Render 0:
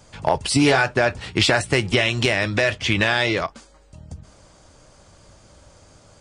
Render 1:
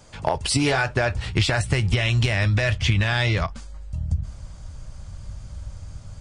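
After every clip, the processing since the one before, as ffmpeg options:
ffmpeg -i in.wav -af "asubboost=boost=12:cutoff=110,acompressor=threshold=-17dB:ratio=6" out.wav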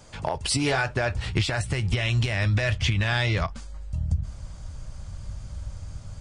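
ffmpeg -i in.wav -af "alimiter=limit=-14dB:level=0:latency=1:release=377" out.wav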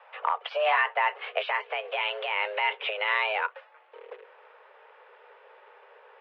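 ffmpeg -i in.wav -af "acrusher=bits=7:mode=log:mix=0:aa=0.000001,highpass=frequency=220:width_type=q:width=0.5412,highpass=frequency=220:width_type=q:width=1.307,lowpass=frequency=2600:width_type=q:width=0.5176,lowpass=frequency=2600:width_type=q:width=0.7071,lowpass=frequency=2600:width_type=q:width=1.932,afreqshift=310,volume=1.5dB" out.wav

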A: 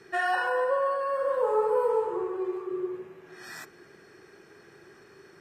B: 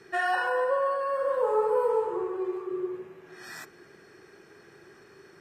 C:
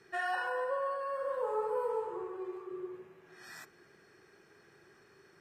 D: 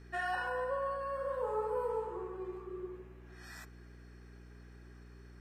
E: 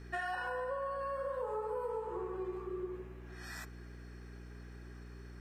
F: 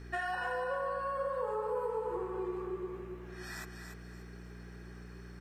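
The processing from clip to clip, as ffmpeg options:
ffmpeg -i in.wav -af anull out.wav
ffmpeg -i in.wav -af "equalizer=frequency=340:width_type=o:width=1.3:gain=-3,volume=-7dB" out.wav
ffmpeg -i in.wav -af "aeval=exprs='val(0)+0.00282*(sin(2*PI*60*n/s)+sin(2*PI*2*60*n/s)/2+sin(2*PI*3*60*n/s)/3+sin(2*PI*4*60*n/s)/4+sin(2*PI*5*60*n/s)/5)':channel_layout=same,volume=-1.5dB" out.wav
ffmpeg -i in.wav -af "acompressor=threshold=-39dB:ratio=6,volume=4dB" out.wav
ffmpeg -i in.wav -af "aecho=1:1:289|578|867:0.447|0.125|0.035,volume=2dB" out.wav

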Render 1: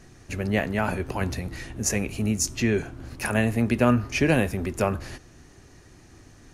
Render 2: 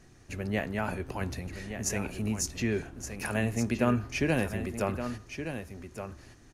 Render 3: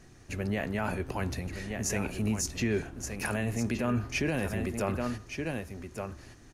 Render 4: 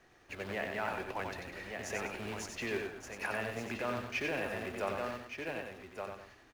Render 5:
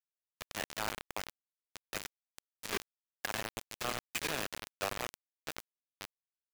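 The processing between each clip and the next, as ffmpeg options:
ffmpeg -i in.wav -af "aecho=1:1:1170:0.355,volume=-6.5dB" out.wav
ffmpeg -i in.wav -af "alimiter=limit=-22.5dB:level=0:latency=1:release=13,volume=2dB" out.wav
ffmpeg -i in.wav -filter_complex "[0:a]acrusher=bits=3:mode=log:mix=0:aa=0.000001,acrossover=split=390 3800:gain=0.178 1 0.2[link_01][link_02][link_03];[link_01][link_02][link_03]amix=inputs=3:normalize=0,aecho=1:1:92|198:0.596|0.211,volume=-2.5dB" out.wav
ffmpeg -i in.wav -af "acrusher=bits=4:mix=0:aa=0.000001,volume=-1dB" out.wav

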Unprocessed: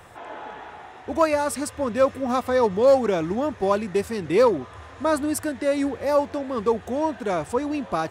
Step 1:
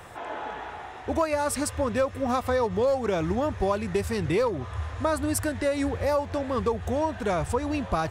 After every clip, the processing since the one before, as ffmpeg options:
ffmpeg -i in.wav -af "asubboost=boost=7:cutoff=97,acompressor=threshold=-24dB:ratio=6,volume=2.5dB" out.wav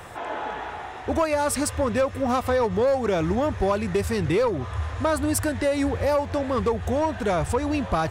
ffmpeg -i in.wav -af "aeval=exprs='0.224*(cos(1*acos(clip(val(0)/0.224,-1,1)))-cos(1*PI/2))+0.0158*(cos(5*acos(clip(val(0)/0.224,-1,1)))-cos(5*PI/2))':channel_layout=same,volume=1.5dB" out.wav

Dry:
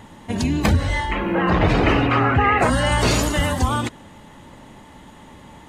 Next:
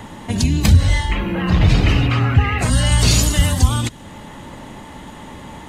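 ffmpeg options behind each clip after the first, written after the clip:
ffmpeg -i in.wav -filter_complex "[0:a]acrossover=split=180|3000[link_01][link_02][link_03];[link_02]acompressor=threshold=-38dB:ratio=3[link_04];[link_01][link_04][link_03]amix=inputs=3:normalize=0,volume=8dB" out.wav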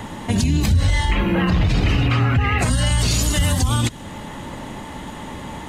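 ffmpeg -i in.wav -af "alimiter=limit=-12.5dB:level=0:latency=1:release=89,volume=3dB" out.wav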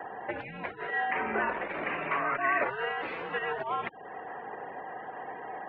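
ffmpeg -i in.wav -af "afftfilt=real='re*gte(hypot(re,im),0.0158)':imag='im*gte(hypot(re,im),0.0158)':win_size=1024:overlap=0.75,highpass=frequency=500:width_type=q:width=0.5412,highpass=frequency=500:width_type=q:width=1.307,lowpass=frequency=2300:width_type=q:width=0.5176,lowpass=frequency=2300:width_type=q:width=0.7071,lowpass=frequency=2300:width_type=q:width=1.932,afreqshift=-120,volume=-3dB" out.wav

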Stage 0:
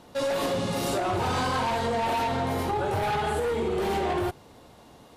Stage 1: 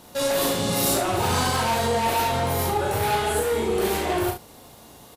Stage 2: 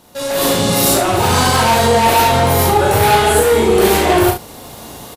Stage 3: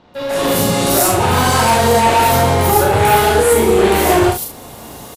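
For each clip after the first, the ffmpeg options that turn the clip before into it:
ffmpeg -i in.wav -filter_complex "[0:a]aemphasis=mode=production:type=50fm,asplit=2[link_01][link_02];[link_02]aecho=0:1:36|68:0.631|0.376[link_03];[link_01][link_03]amix=inputs=2:normalize=0,volume=1.5dB" out.wav
ffmpeg -i in.wav -af "dynaudnorm=framelen=270:gausssize=3:maxgain=15dB" out.wav
ffmpeg -i in.wav -filter_complex "[0:a]acrossover=split=4100[link_01][link_02];[link_02]adelay=140[link_03];[link_01][link_03]amix=inputs=2:normalize=0" out.wav

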